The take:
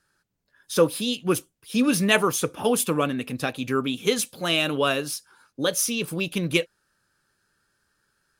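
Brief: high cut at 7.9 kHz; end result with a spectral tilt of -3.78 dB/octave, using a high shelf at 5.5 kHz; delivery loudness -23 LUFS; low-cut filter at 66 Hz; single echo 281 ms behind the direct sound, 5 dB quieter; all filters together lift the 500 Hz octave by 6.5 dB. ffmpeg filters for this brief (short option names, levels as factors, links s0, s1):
-af "highpass=66,lowpass=7900,equalizer=f=500:t=o:g=7.5,highshelf=f=5500:g=5,aecho=1:1:281:0.562,volume=0.708"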